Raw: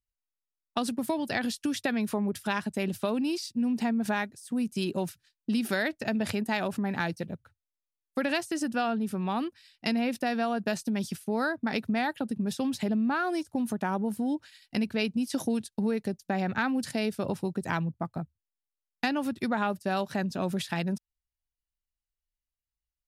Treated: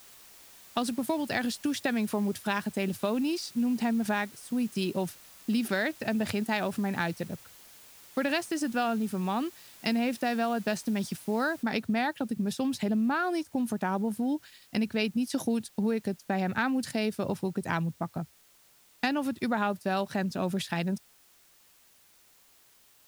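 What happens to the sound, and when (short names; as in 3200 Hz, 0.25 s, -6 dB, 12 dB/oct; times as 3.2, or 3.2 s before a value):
5.68–6.28 air absorption 54 m
11.63 noise floor step -53 dB -61 dB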